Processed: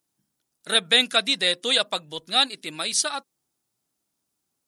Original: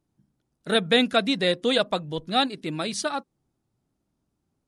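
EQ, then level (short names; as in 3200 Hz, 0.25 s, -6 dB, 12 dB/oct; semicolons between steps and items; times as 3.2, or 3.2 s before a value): tilt +4 dB/oct; -1.5 dB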